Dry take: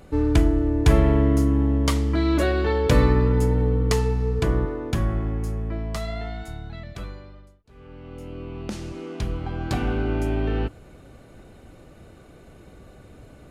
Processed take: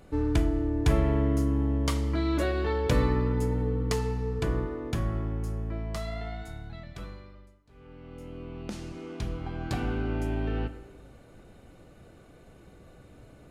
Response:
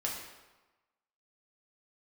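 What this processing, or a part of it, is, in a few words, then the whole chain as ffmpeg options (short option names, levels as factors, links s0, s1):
compressed reverb return: -filter_complex "[0:a]asplit=2[s0][s1];[1:a]atrim=start_sample=2205[s2];[s1][s2]afir=irnorm=-1:irlink=0,acompressor=threshold=0.112:ratio=6,volume=0.376[s3];[s0][s3]amix=inputs=2:normalize=0,volume=0.398"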